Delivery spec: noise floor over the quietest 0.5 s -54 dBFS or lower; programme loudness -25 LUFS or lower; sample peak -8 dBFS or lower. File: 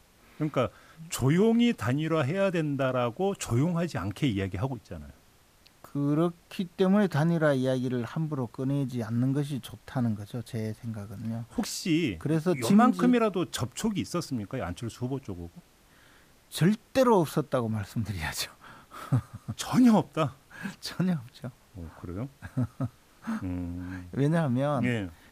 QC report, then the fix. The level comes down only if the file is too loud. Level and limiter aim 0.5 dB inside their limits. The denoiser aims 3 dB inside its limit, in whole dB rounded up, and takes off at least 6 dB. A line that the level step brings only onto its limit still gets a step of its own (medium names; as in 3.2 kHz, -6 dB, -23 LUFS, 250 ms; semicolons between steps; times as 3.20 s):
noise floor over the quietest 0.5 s -60 dBFS: pass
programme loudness -28.5 LUFS: pass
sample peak -11.0 dBFS: pass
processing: none needed